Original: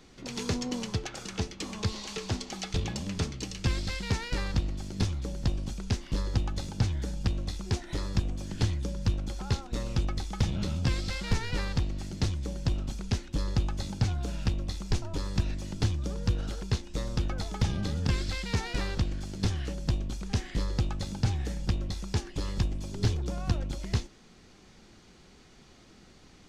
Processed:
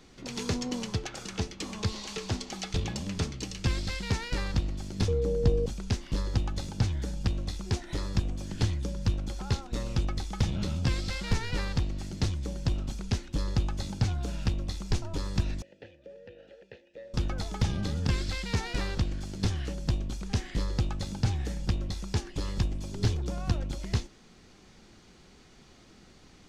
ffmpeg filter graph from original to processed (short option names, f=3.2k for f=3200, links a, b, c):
-filter_complex "[0:a]asettb=1/sr,asplit=3[a][b][c];[a]atrim=end=5.084[d];[b]atrim=start=5.08:end=5.66,asetpts=PTS-STARTPTS,afade=t=in:d=0.004:c=qsin,afade=t=out:st=0.576:d=0.004:c=qsin,tiltshelf=f=920:g=4,aeval=exprs='val(0)+0.0447*sin(2*PI*470*n/s)':c=same[e];[c]atrim=start=5.656[f];[d][e]acrossfade=d=0.004:c1=hsin:c2=qsin[g];[g][f]acrossfade=d=0.004:c1=qsin:c2=hsin,asettb=1/sr,asplit=3[h][i][j];[h]atrim=end=15.624[k];[i]atrim=start=15.62:end=17.14,asetpts=PTS-STARTPTS,afade=t=in:d=0.004:c=qsin,afade=t=out:st=1.516:d=0.004:c=qsin,acrossover=split=3700[l][m];[m]acompressor=threshold=-50dB:ratio=4:attack=1:release=60[n];[l][n]amix=inputs=2:normalize=0,asplit=3[o][p][q];[o]bandpass=f=530:t=q:w=8,volume=0dB[r];[p]bandpass=f=1.84k:t=q:w=8,volume=-6dB[s];[q]bandpass=f=2.48k:t=q:w=8,volume=-9dB[t];[r][s][t]amix=inputs=3:normalize=0,equalizer=f=880:t=o:w=0.38:g=4[u];[j]atrim=start=17.136[v];[k][u]acrossfade=d=0.004:c1=hsin:c2=qsin[w];[w][v]acrossfade=d=0.004:c1=qsin:c2=hsin"